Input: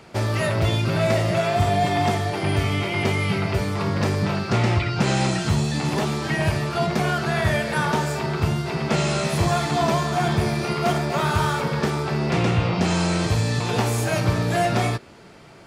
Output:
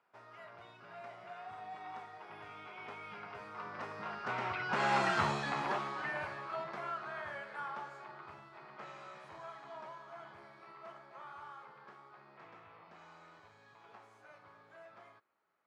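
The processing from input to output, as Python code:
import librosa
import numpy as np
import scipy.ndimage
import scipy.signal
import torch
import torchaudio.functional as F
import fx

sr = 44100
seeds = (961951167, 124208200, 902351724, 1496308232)

y = fx.doppler_pass(x, sr, speed_mps=19, closest_m=5.2, pass_at_s=5.19)
y = fx.bandpass_q(y, sr, hz=1200.0, q=1.6)
y = y * 10.0 ** (3.5 / 20.0)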